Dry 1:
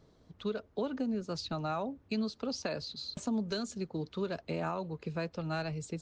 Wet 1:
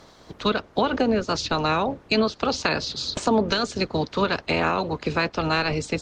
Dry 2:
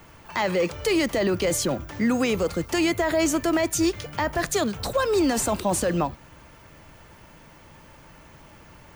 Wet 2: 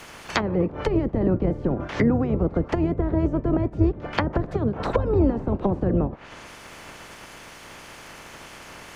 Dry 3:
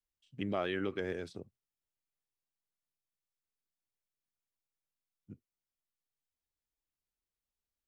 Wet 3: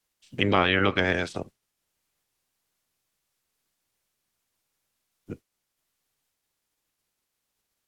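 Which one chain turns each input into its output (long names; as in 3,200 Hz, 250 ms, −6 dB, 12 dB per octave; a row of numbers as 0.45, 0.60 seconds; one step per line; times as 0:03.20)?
ceiling on every frequency bin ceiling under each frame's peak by 17 dB
treble cut that deepens with the level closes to 360 Hz, closed at −21.5 dBFS
loudness normalisation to −24 LKFS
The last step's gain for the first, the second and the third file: +13.0, +7.5, +13.0 decibels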